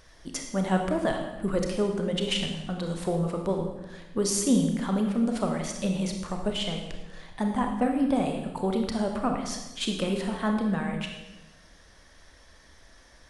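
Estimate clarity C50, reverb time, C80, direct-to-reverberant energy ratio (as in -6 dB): 5.0 dB, 1.1 s, 7.0 dB, 3.0 dB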